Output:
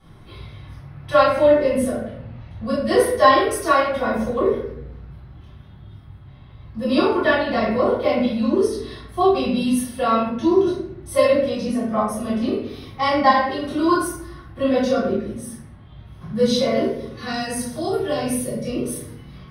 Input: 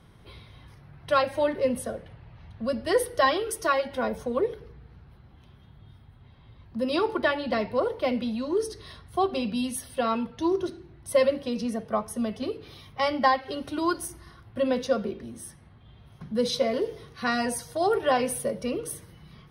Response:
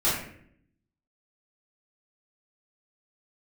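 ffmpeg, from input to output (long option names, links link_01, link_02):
-filter_complex "[0:a]asettb=1/sr,asplit=3[link_01][link_02][link_03];[link_01]atrim=end=16.804[link_04];[link_02]atrim=start=16.8:end=18.94,asetpts=PTS-STARTPTS,afade=type=in:duration=0.004:curve=qsin,afade=type=out:start_time=2.136:duration=0.004:curve=qsin,acrossover=split=370|3000[link_05][link_06][link_07];[link_06]acompressor=threshold=-41dB:ratio=2.5[link_08];[link_05][link_08][link_07]amix=inputs=3:normalize=0[link_09];[link_03]atrim=start=18.936[link_10];[link_04][link_09]acrossfade=duration=0.004:curve1=hsin:curve2=qsin[link_11];[link_11][link_10]acrossfade=duration=0.004:curve1=qsin:curve2=hsin[link_12];[1:a]atrim=start_sample=2205,asetrate=41013,aresample=44100[link_13];[link_12][link_13]afir=irnorm=-1:irlink=0,volume=-6.5dB"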